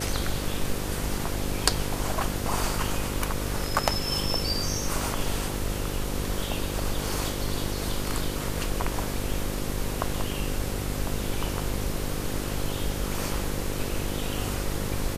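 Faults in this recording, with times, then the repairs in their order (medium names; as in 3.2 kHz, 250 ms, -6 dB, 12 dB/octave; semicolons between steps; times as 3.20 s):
buzz 50 Hz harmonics 11 -33 dBFS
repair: de-hum 50 Hz, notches 11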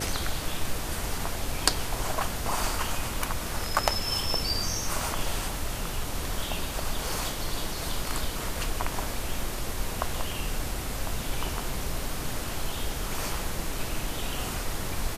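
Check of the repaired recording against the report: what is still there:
nothing left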